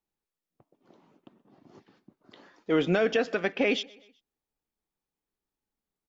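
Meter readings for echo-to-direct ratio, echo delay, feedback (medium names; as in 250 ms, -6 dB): -22.5 dB, 126 ms, 49%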